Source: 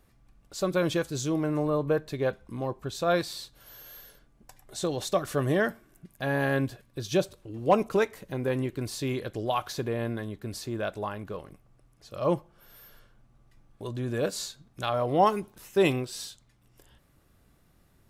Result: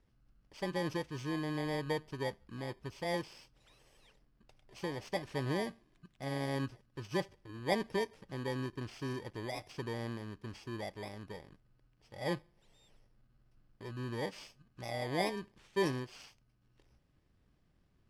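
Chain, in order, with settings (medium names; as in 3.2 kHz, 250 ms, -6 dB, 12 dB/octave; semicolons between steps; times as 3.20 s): bit-reversed sample order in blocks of 32 samples; low-pass 4.3 kHz 12 dB/octave; trim -8 dB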